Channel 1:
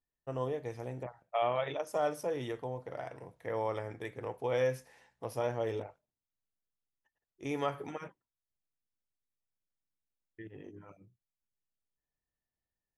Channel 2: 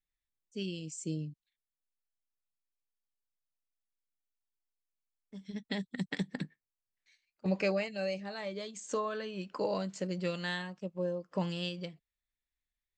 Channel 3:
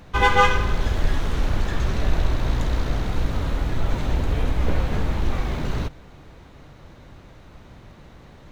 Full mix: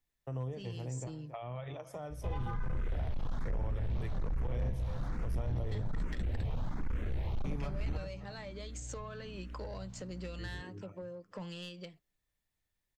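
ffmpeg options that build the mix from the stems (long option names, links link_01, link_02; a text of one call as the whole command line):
ffmpeg -i stem1.wav -i stem2.wav -i stem3.wav -filter_complex "[0:a]lowshelf=frequency=140:gain=8,volume=2dB,asplit=2[link_01][link_02];[link_02]volume=-17.5dB[link_03];[1:a]highpass=frequency=350:poles=1,asoftclip=type=tanh:threshold=-30.5dB,volume=2.5dB[link_04];[2:a]acrossover=split=3000[link_05][link_06];[link_06]acompressor=threshold=-50dB:ratio=4:attack=1:release=60[link_07];[link_05][link_07]amix=inputs=2:normalize=0,aeval=exprs='val(0)+0.02*(sin(2*PI*60*n/s)+sin(2*PI*2*60*n/s)/2+sin(2*PI*3*60*n/s)/3+sin(2*PI*4*60*n/s)/4+sin(2*PI*5*60*n/s)/5)':channel_layout=same,asplit=2[link_08][link_09];[link_09]afreqshift=1.2[link_10];[link_08][link_10]amix=inputs=2:normalize=1,adelay=2100,volume=-7.5dB[link_11];[link_03]aecho=0:1:275|550|825|1100|1375:1|0.35|0.122|0.0429|0.015[link_12];[link_01][link_04][link_11][link_12]amix=inputs=4:normalize=0,acrossover=split=170[link_13][link_14];[link_14]acompressor=threshold=-44dB:ratio=5[link_15];[link_13][link_15]amix=inputs=2:normalize=0,volume=29dB,asoftclip=hard,volume=-29dB" out.wav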